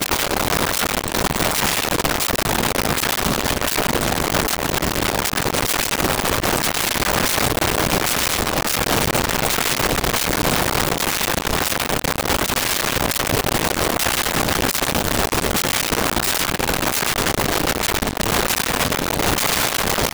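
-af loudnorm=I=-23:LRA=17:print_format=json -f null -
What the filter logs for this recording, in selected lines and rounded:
"input_i" : "-18.6",
"input_tp" : "-5.1",
"input_lra" : "0.9",
"input_thresh" : "-28.6",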